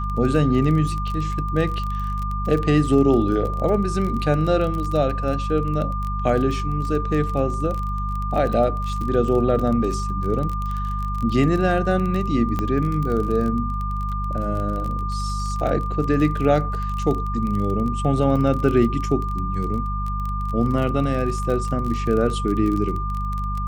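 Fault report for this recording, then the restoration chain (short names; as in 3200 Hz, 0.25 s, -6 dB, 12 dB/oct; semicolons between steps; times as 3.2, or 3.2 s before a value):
crackle 26/s -26 dBFS
hum 50 Hz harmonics 4 -26 dBFS
tone 1200 Hz -28 dBFS
12.59 pop -12 dBFS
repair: de-click; notch 1200 Hz, Q 30; de-hum 50 Hz, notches 4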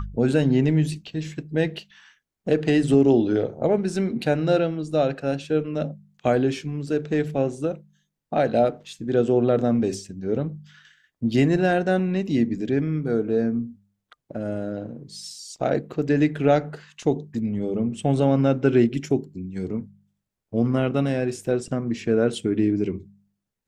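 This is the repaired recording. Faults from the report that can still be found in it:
none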